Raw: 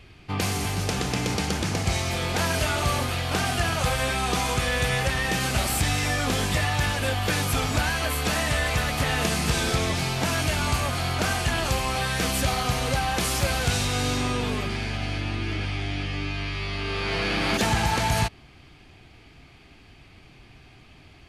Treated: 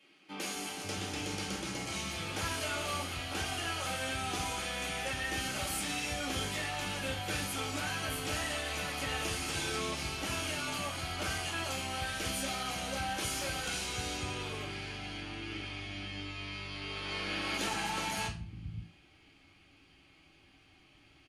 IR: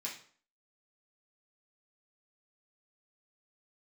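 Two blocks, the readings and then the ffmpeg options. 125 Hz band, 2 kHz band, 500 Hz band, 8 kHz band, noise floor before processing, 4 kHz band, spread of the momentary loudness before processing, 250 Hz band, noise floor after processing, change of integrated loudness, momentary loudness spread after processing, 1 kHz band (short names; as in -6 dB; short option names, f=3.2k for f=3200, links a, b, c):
-16.0 dB, -9.5 dB, -11.5 dB, -8.5 dB, -51 dBFS, -8.0 dB, 5 LU, -11.5 dB, -63 dBFS, -10.5 dB, 7 LU, -10.5 dB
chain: -filter_complex "[0:a]acrossover=split=200[a][b];[a]adelay=550[c];[c][b]amix=inputs=2:normalize=0[d];[1:a]atrim=start_sample=2205,asetrate=57330,aresample=44100[e];[d][e]afir=irnorm=-1:irlink=0,volume=-6.5dB"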